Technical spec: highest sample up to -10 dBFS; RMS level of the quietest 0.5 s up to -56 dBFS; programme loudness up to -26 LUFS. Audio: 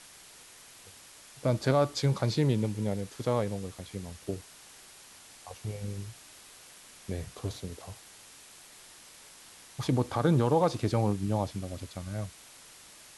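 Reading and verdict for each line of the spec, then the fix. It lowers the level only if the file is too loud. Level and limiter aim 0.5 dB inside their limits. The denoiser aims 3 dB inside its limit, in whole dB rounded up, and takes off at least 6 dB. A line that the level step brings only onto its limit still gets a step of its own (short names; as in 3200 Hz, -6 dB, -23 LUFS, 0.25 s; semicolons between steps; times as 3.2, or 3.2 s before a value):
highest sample -13.0 dBFS: OK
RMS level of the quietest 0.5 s -53 dBFS: fail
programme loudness -31.0 LUFS: OK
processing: denoiser 6 dB, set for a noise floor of -53 dBFS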